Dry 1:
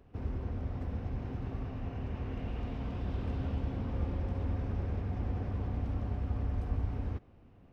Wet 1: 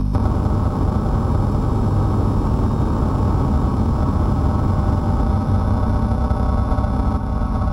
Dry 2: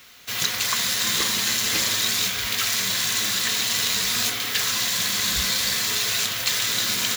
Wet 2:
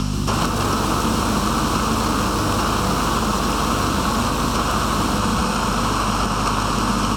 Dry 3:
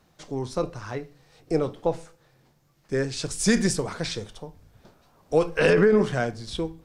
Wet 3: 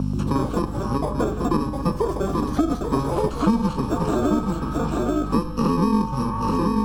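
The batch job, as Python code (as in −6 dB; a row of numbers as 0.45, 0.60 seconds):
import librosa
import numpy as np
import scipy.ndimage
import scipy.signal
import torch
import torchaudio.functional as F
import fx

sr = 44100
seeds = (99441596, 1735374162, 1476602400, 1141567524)

y = fx.bit_reversed(x, sr, seeds[0], block=64)
y = scipy.signal.sosfilt(scipy.signal.butter(2, 4900.0, 'lowpass', fs=sr, output='sos'), y)
y = fx.peak_eq(y, sr, hz=220.0, db=9.5, octaves=0.49)
y = fx.comb_fb(y, sr, f0_hz=100.0, decay_s=1.1, harmonics='odd', damping=0.0, mix_pct=70)
y = fx.add_hum(y, sr, base_hz=50, snr_db=10)
y = fx.echo_stepped(y, sr, ms=483, hz=1100.0, octaves=0.7, feedback_pct=70, wet_db=-10.0)
y = fx.echo_pitch(y, sr, ms=134, semitones=6, count=2, db_per_echo=-6.0)
y = fx.high_shelf_res(y, sr, hz=1500.0, db=-9.0, q=3.0)
y = y + 10.0 ** (-8.5 / 20.0) * np.pad(y, (int(835 * sr / 1000.0), 0))[:len(y)]
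y = fx.band_squash(y, sr, depth_pct=100)
y = librosa.util.normalize(y) * 10.0 ** (-6 / 20.0)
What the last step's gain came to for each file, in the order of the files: +23.5, +20.0, +11.5 decibels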